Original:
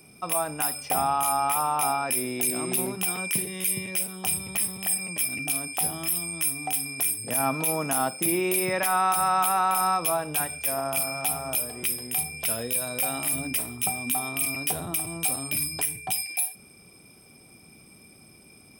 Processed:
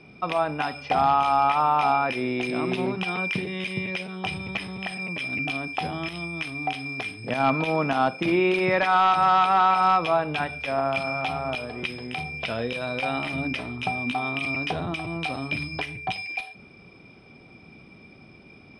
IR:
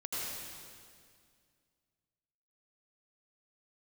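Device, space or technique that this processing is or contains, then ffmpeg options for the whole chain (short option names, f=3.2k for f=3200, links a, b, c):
synthesiser wavefolder: -af "aeval=exprs='0.15*(abs(mod(val(0)/0.15+3,4)-2)-1)':c=same,lowpass=f=4k:w=0.5412,lowpass=f=4k:w=1.3066,volume=5dB"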